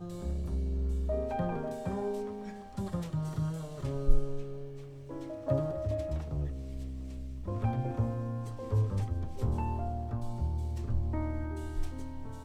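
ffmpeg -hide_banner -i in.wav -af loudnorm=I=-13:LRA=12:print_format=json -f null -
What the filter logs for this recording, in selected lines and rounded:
"input_i" : "-35.7",
"input_tp" : "-10.4",
"input_lra" : "2.2",
"input_thresh" : "-45.7",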